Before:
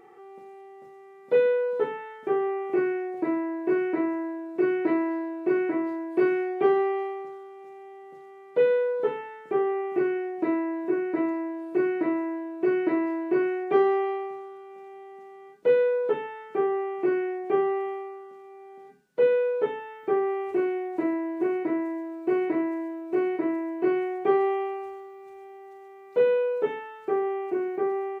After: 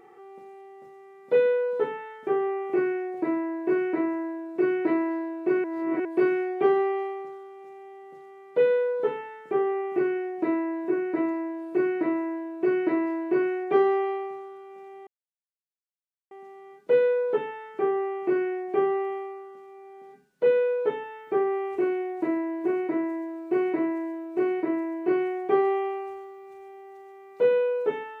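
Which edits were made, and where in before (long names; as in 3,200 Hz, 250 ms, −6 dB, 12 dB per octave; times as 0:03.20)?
0:05.64–0:06.05: reverse
0:15.07: splice in silence 1.24 s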